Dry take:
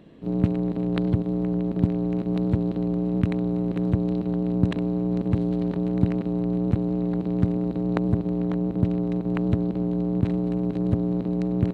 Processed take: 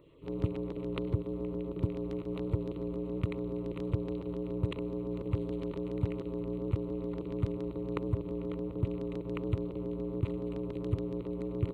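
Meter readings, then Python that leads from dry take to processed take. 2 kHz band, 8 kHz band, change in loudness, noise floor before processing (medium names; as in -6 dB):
-8.5 dB, no reading, -11.0 dB, -32 dBFS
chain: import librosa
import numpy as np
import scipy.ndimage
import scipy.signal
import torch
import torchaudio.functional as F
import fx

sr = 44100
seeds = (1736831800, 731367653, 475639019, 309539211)

y = fx.fixed_phaser(x, sr, hz=1100.0, stages=8)
y = fx.filter_lfo_notch(y, sr, shape='saw_down', hz=7.1, low_hz=220.0, high_hz=3500.0, q=1.6)
y = F.gain(torch.from_numpy(y), -4.0).numpy()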